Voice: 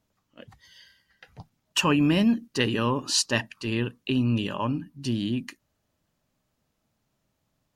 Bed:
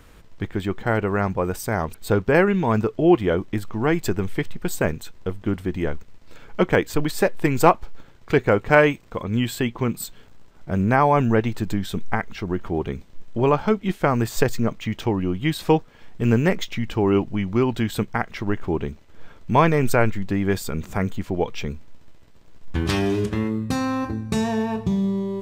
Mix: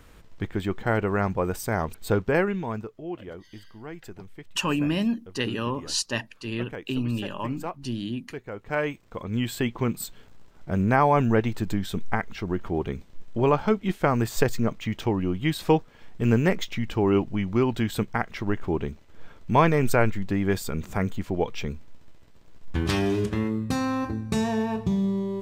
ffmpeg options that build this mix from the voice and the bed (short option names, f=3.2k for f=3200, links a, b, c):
-filter_complex "[0:a]adelay=2800,volume=-3.5dB[a];[1:a]volume=14dB,afade=t=out:st=2.04:d=0.92:silence=0.149624,afade=t=in:st=8.52:d=1.16:silence=0.149624[b];[a][b]amix=inputs=2:normalize=0"